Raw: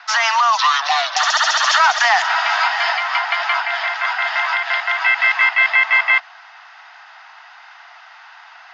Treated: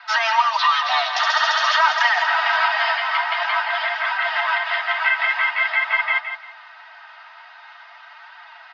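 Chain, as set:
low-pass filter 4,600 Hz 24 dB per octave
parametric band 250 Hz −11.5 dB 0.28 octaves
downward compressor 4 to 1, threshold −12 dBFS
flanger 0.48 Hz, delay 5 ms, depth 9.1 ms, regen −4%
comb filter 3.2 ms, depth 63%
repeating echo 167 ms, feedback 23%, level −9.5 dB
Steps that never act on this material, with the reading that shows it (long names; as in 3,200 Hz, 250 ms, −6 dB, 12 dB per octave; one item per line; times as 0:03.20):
parametric band 250 Hz: nothing at its input below 600 Hz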